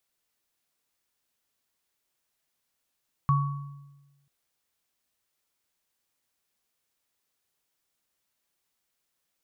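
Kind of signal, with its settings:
inharmonic partials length 0.99 s, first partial 141 Hz, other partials 1,120 Hz, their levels −3 dB, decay 1.19 s, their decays 0.79 s, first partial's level −19 dB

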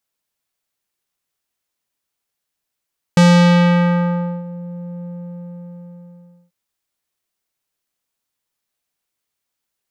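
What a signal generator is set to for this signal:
subtractive voice square F3 12 dB per octave, low-pass 470 Hz, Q 0.97, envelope 4 octaves, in 1.44 s, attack 2.4 ms, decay 1.26 s, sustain −21 dB, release 1.47 s, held 1.87 s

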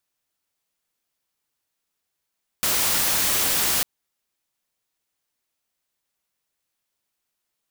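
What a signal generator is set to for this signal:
noise white, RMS −21.5 dBFS 1.20 s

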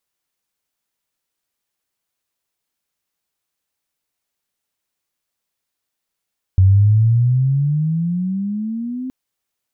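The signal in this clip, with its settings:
pitch glide with a swell sine, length 2.52 s, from 92.5 Hz, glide +18 semitones, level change −16 dB, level −7 dB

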